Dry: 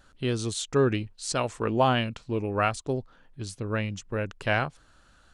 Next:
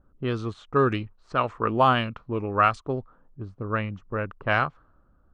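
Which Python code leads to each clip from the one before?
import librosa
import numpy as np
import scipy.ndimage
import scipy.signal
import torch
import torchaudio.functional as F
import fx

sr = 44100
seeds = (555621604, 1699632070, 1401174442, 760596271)

y = fx.env_lowpass(x, sr, base_hz=420.0, full_db=-18.5)
y = fx.peak_eq(y, sr, hz=1200.0, db=10.5, octaves=0.53)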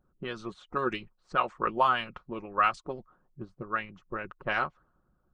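y = x + 0.59 * np.pad(x, (int(5.5 * sr / 1000.0), 0))[:len(x)]
y = fx.hpss(y, sr, part='harmonic', gain_db=-16)
y = F.gain(torch.from_numpy(y), -2.5).numpy()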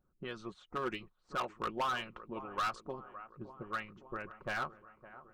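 y = fx.echo_wet_lowpass(x, sr, ms=562, feedback_pct=62, hz=1400.0, wet_db=-16.5)
y = np.clip(y, -10.0 ** (-24.0 / 20.0), 10.0 ** (-24.0 / 20.0))
y = F.gain(torch.from_numpy(y), -6.0).numpy()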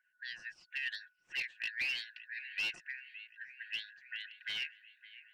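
y = fx.band_shuffle(x, sr, order='4123')
y = F.gain(torch.from_numpy(y), -2.0).numpy()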